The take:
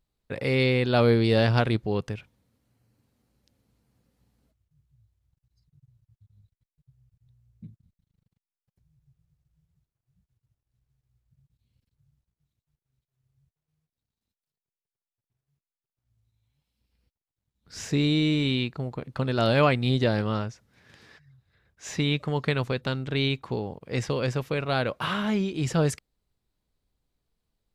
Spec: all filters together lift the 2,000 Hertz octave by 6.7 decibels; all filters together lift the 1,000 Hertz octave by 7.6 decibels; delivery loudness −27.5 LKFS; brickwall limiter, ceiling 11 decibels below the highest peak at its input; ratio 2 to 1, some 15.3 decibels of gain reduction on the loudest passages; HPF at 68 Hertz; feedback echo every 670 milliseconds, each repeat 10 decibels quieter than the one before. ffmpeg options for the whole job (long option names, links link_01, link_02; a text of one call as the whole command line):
ffmpeg -i in.wav -af "highpass=68,equalizer=frequency=1000:width_type=o:gain=8.5,equalizer=frequency=2000:width_type=o:gain=6,acompressor=threshold=-40dB:ratio=2,alimiter=level_in=2dB:limit=-24dB:level=0:latency=1,volume=-2dB,aecho=1:1:670|1340|2010|2680:0.316|0.101|0.0324|0.0104,volume=11.5dB" out.wav